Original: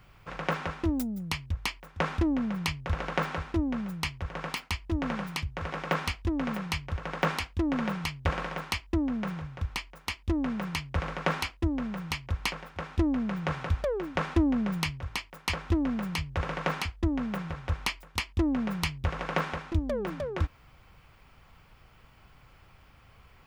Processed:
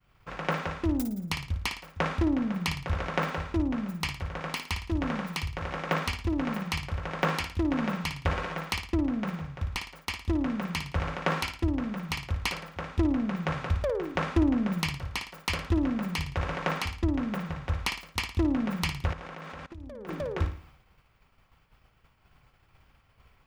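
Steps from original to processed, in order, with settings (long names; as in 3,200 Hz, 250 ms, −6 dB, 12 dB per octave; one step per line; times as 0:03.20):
flutter between parallel walls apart 9.6 metres, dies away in 0.43 s
0:19.13–0:20.09: output level in coarse steps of 21 dB
downward expander −48 dBFS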